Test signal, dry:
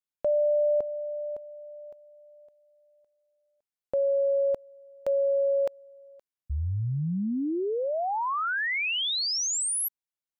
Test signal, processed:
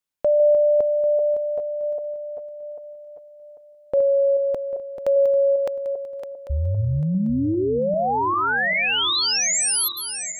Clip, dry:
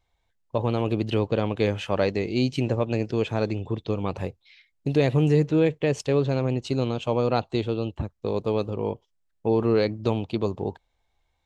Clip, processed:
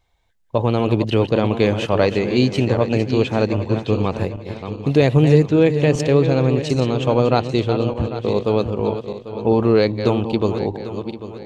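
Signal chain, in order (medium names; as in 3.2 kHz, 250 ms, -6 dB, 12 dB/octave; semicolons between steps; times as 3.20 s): backward echo that repeats 397 ms, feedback 56%, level -9 dB; trim +6.5 dB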